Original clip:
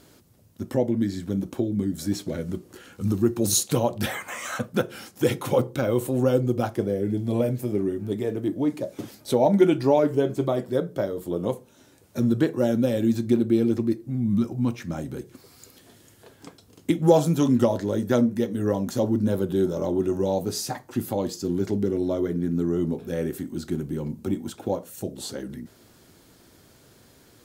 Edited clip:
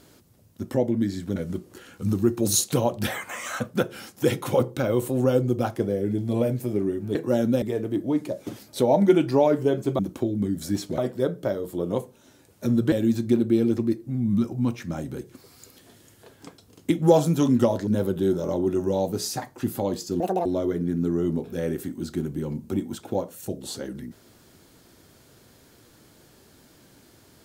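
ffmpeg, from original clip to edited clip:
-filter_complex "[0:a]asplit=10[s0][s1][s2][s3][s4][s5][s6][s7][s8][s9];[s0]atrim=end=1.362[s10];[s1]atrim=start=2.348:end=8.142[s11];[s2]atrim=start=12.448:end=12.922[s12];[s3]atrim=start=8.138:end=10.512[s13];[s4]atrim=start=1.358:end=2.352[s14];[s5]atrim=start=10.508:end=12.452[s15];[s6]atrim=start=12.918:end=17.872[s16];[s7]atrim=start=19.198:end=21.534[s17];[s8]atrim=start=21.53:end=22,asetpts=PTS-STARTPTS,asetrate=81585,aresample=44100[s18];[s9]atrim=start=21.996[s19];[s10][s11]acrossfade=d=0.004:c1=hsin:c2=hsin[s20];[s20][s12]acrossfade=d=0.004:c1=hsin:c2=hsin[s21];[s21][s13]acrossfade=d=0.004:c1=hsin:c2=hsin[s22];[s22][s14]acrossfade=d=0.004:c1=hsin:c2=hsin[s23];[s23][s15]acrossfade=d=0.004:c1=hsin:c2=hsin[s24];[s24][s16]acrossfade=d=0.004:c1=hsin:c2=hsin[s25];[s25][s17]acrossfade=d=0.004:c1=hsin:c2=hsin[s26];[s26][s18]acrossfade=d=0.004:c1=hsin:c2=hsin[s27];[s27][s19]acrossfade=d=0.004:c1=hsin:c2=hsin"

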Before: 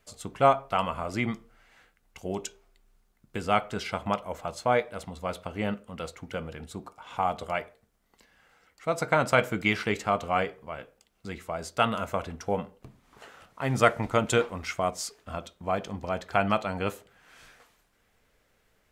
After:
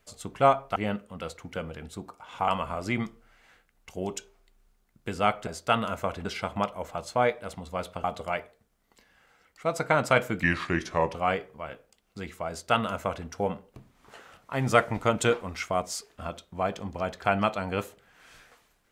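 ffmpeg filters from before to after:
-filter_complex "[0:a]asplit=8[s0][s1][s2][s3][s4][s5][s6][s7];[s0]atrim=end=0.762[s8];[s1]atrim=start=5.538:end=7.262[s9];[s2]atrim=start=0.758:end=3.752[s10];[s3]atrim=start=11.568:end=12.352[s11];[s4]atrim=start=3.748:end=5.542[s12];[s5]atrim=start=7.258:end=9.654[s13];[s6]atrim=start=9.65:end=10.23,asetpts=PTS-STARTPTS,asetrate=35721,aresample=44100[s14];[s7]atrim=start=10.226[s15];[s8][s9]acrossfade=d=0.004:c1=hsin:c2=hsin[s16];[s16][s10]acrossfade=d=0.004:c1=hsin:c2=hsin[s17];[s17][s11]acrossfade=d=0.004:c1=hsin:c2=hsin[s18];[s18][s12]acrossfade=d=0.004:c1=hsin:c2=hsin[s19];[s19][s13]acrossfade=d=0.004:c1=hsin:c2=hsin[s20];[s20][s14]acrossfade=d=0.004:c1=hsin:c2=hsin[s21];[s21][s15]acrossfade=d=0.004:c1=hsin:c2=hsin"

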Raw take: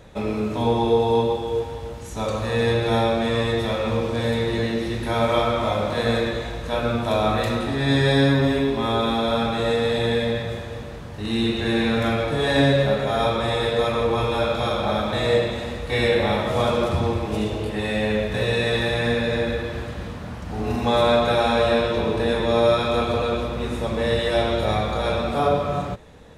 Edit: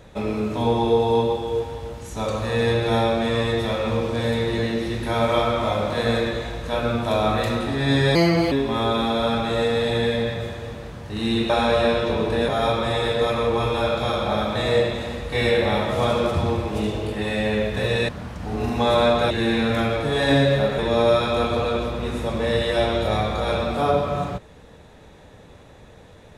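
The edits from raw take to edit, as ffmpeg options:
-filter_complex "[0:a]asplit=8[s0][s1][s2][s3][s4][s5][s6][s7];[s0]atrim=end=8.154[s8];[s1]atrim=start=8.15:end=8.6,asetpts=PTS-STARTPTS,asetrate=54243,aresample=44100,atrim=end_sample=16134,asetpts=PTS-STARTPTS[s9];[s2]atrim=start=8.596:end=11.582[s10];[s3]atrim=start=21.368:end=22.362[s11];[s4]atrim=start=13.058:end=18.662[s12];[s5]atrim=start=20.148:end=21.372[s13];[s6]atrim=start=11.578:end=13.062[s14];[s7]atrim=start=22.358[s15];[s8][s9]acrossfade=d=0.004:c1=hsin:c2=hsin[s16];[s16][s10]acrossfade=d=0.004:c1=hsin:c2=hsin[s17];[s17][s11]acrossfade=d=0.004:c1=hsin:c2=hsin[s18];[s18][s12]acrossfade=d=0.004:c1=hsin:c2=hsin[s19];[s19][s13]acrossfade=d=0.004:c1=hsin:c2=hsin[s20];[s20][s14]acrossfade=d=0.004:c1=hsin:c2=hsin[s21];[s21][s15]acrossfade=d=0.004:c1=hsin:c2=hsin"

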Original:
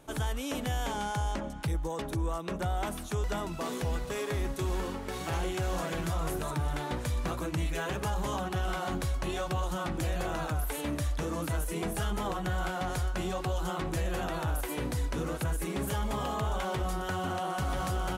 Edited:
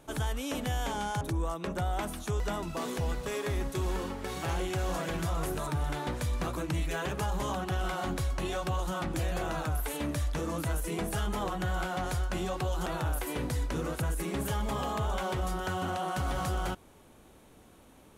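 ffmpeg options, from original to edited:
-filter_complex "[0:a]asplit=3[s0][s1][s2];[s0]atrim=end=1.212[s3];[s1]atrim=start=2.048:end=13.702[s4];[s2]atrim=start=14.278[s5];[s3][s4]acrossfade=d=0.004:c1=hsin:c2=hsin[s6];[s6][s5]acrossfade=d=0.004:c1=hsin:c2=hsin"

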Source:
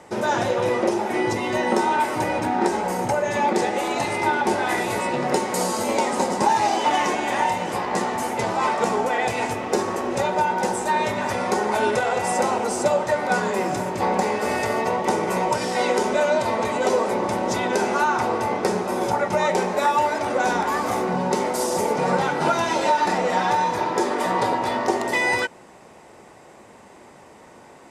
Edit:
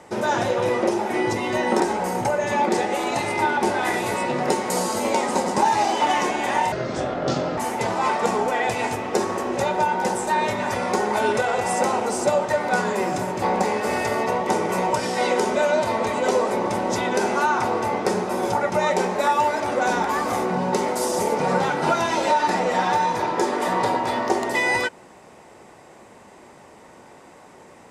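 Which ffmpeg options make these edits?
-filter_complex "[0:a]asplit=4[s0][s1][s2][s3];[s0]atrim=end=1.802[s4];[s1]atrim=start=2.638:end=7.564[s5];[s2]atrim=start=7.56:end=8.16,asetpts=PTS-STARTPTS,asetrate=30870,aresample=44100[s6];[s3]atrim=start=8.156[s7];[s4][s5]acrossfade=d=0.004:c1=hsin:c2=hsin[s8];[s8][s6]acrossfade=d=0.004:c1=hsin:c2=hsin[s9];[s9][s7]acrossfade=d=0.004:c1=hsin:c2=hsin"

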